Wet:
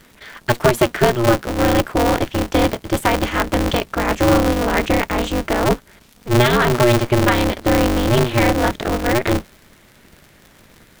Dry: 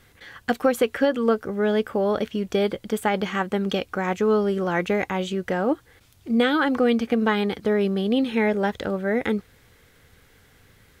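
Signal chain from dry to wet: octave divider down 1 oct, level -5 dB; crackle 67 per s -38 dBFS; polarity switched at an audio rate 120 Hz; trim +5.5 dB

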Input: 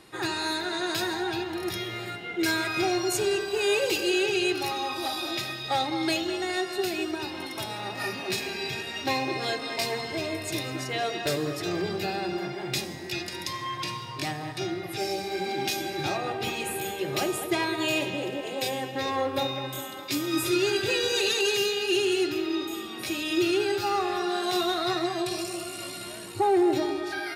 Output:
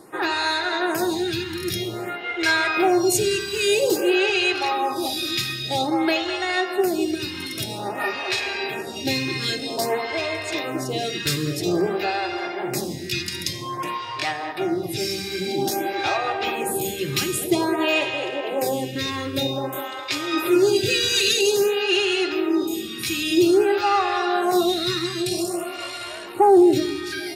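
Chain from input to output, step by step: lamp-driven phase shifter 0.51 Hz; trim +9 dB

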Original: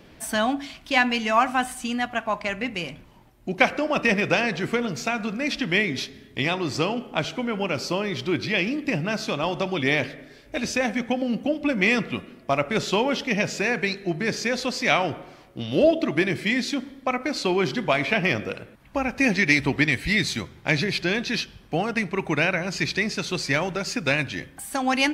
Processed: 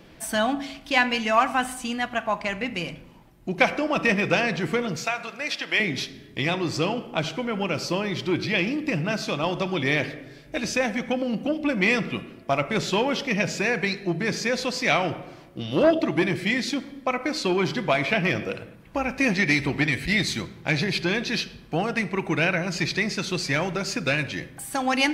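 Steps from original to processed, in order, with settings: 4.96–5.80 s: high-pass 570 Hz 12 dB/octave; reverberation RT60 0.90 s, pre-delay 6 ms, DRR 12 dB; transformer saturation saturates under 830 Hz

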